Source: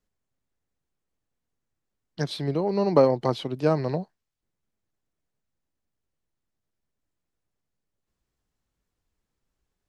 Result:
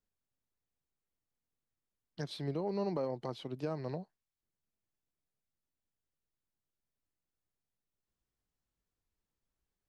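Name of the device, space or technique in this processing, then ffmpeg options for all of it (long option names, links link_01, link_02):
stacked limiters: -af "alimiter=limit=-12dB:level=0:latency=1:release=476,alimiter=limit=-17dB:level=0:latency=1:release=244,volume=-9dB"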